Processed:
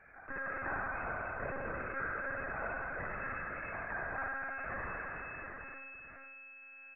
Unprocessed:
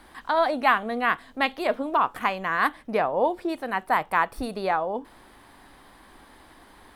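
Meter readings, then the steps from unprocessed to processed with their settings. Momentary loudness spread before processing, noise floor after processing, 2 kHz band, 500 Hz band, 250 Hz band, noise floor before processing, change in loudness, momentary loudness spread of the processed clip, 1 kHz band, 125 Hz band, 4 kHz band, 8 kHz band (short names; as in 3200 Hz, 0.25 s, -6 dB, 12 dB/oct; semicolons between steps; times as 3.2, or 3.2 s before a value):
6 LU, -54 dBFS, -8.5 dB, -17.0 dB, -18.0 dB, -53 dBFS, -14.5 dB, 11 LU, -17.0 dB, -4.0 dB, under -40 dB, n/a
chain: minimum comb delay 0.92 ms; low-pass opened by the level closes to 960 Hz, open at -24 dBFS; differentiator; de-hum 52.67 Hz, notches 28; in parallel at -4 dB: backlash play -40 dBFS; on the sum: flange 0.53 Hz, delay 2.9 ms, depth 5.2 ms, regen +57%; inverted band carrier 2600 Hz; on a send: echo 0.696 s -13.5 dB; on the sum: spring tank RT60 2.6 s, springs 52 ms, chirp 65 ms, DRR -4 dB; monotone LPC vocoder at 8 kHz 270 Hz; fast leveller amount 50%; gain -3.5 dB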